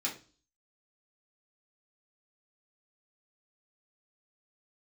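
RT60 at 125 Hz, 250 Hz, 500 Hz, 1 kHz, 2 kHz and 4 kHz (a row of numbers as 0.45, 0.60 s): 0.50, 0.50, 0.40, 0.35, 0.35, 0.40 s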